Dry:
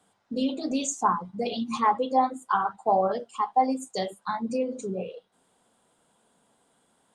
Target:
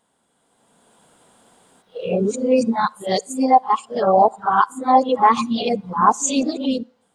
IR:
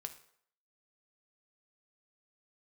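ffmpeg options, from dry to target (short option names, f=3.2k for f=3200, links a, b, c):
-filter_complex "[0:a]areverse,dynaudnorm=f=170:g=9:m=13.5dB,asplit=2[a][b];[1:a]atrim=start_sample=2205[c];[b][c]afir=irnorm=-1:irlink=0,volume=-12dB[d];[a][d]amix=inputs=2:normalize=0,volume=-2dB"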